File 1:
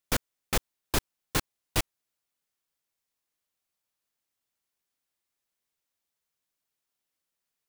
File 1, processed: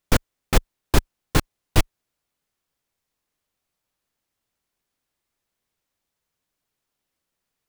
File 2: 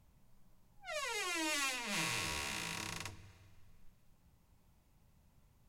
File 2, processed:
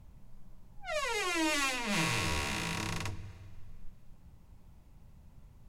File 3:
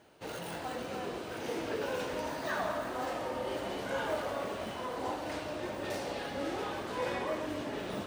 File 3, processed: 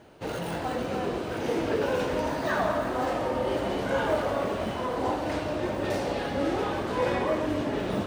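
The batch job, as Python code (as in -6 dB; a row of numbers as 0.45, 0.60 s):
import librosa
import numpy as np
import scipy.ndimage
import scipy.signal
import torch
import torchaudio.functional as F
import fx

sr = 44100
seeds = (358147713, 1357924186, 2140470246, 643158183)

y = fx.tilt_eq(x, sr, slope=-1.5)
y = y * librosa.db_to_amplitude(7.0)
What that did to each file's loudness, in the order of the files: +7.0, +5.5, +8.0 LU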